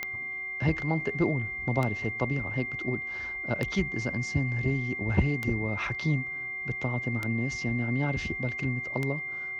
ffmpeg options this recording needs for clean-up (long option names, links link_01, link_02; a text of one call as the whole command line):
ffmpeg -i in.wav -af "adeclick=threshold=4,bandreject=frequency=375:width_type=h:width=4,bandreject=frequency=750:width_type=h:width=4,bandreject=frequency=1125:width_type=h:width=4,bandreject=frequency=2100:width=30" out.wav